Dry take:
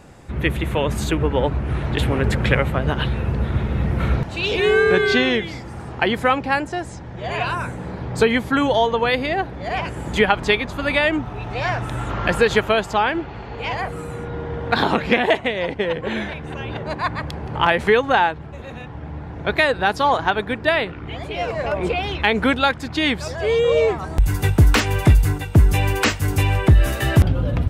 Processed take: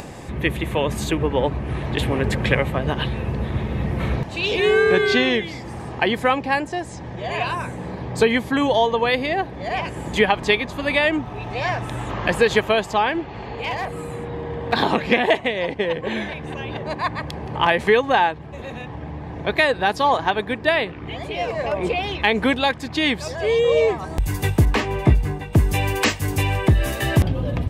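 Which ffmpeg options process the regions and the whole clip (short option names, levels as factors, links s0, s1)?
-filter_complex "[0:a]asettb=1/sr,asplit=3[s0][s1][s2];[s0]atrim=end=13.454[s3];[s1]atrim=start=13.45:end=14.73,asetpts=PTS-STARTPTS,afade=t=in:d=0.004:c=qsin,afade=t=out:st=1.276:d=0.004:c=qsin,bandreject=f=5800:w=8.2,aeval=exprs='clip(val(0),-1,0.1)':c=same[s4];[s2]atrim=start=14.726[s5];[s3][s4]acrossfade=d=0.004:c1=hsin:c2=qsin[s6];[s6][s5]acrossfade=d=0.004:c1=qsin:c2=hsin,asettb=1/sr,asplit=3[s7][s8][s9];[s7]atrim=end=24.654[s10];[s8]atrim=start=24.65:end=25.53,asetpts=PTS-STARTPTS,afade=t=in:d=0.004:c=qsin,afade=t=out:st=0.876:d=0.004:c=qsin,lowpass=f=1600:p=1,asplit=2[s11][s12];[s12]adelay=15,volume=0.501[s13];[s11][s13]amix=inputs=2:normalize=0,atrim=end_sample=38808[s14];[s9]atrim=start=25.526[s15];[s10][s14]acrossfade=d=0.004:c1=hsin:c2=qsin[s16];[s16][s15]acrossfade=d=0.004:c1=qsin:c2=hsin,lowshelf=f=82:g=-8,bandreject=f=1400:w=5.9,acompressor=mode=upward:threshold=0.0501:ratio=2.5"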